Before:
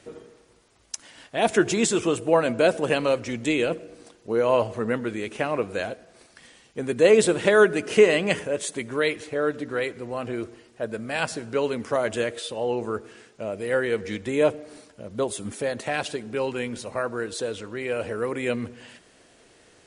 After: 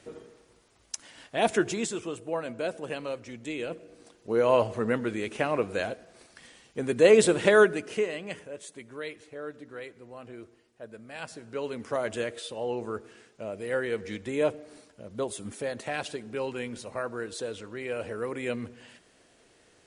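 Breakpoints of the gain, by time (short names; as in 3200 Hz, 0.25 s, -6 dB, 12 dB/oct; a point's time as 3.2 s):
1.42 s -2.5 dB
2.04 s -12 dB
3.49 s -12 dB
4.41 s -1.5 dB
7.58 s -1.5 dB
8.09 s -14 dB
11.12 s -14 dB
11.95 s -5.5 dB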